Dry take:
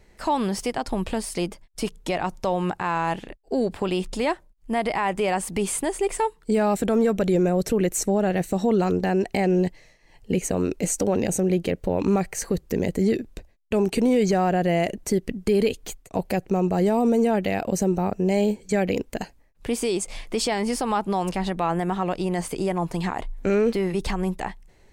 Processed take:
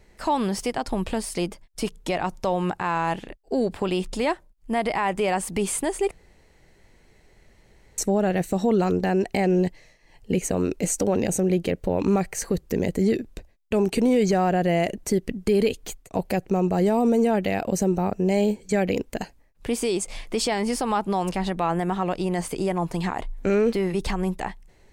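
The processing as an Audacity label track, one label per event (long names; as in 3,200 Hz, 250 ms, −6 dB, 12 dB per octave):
6.110000	7.980000	fill with room tone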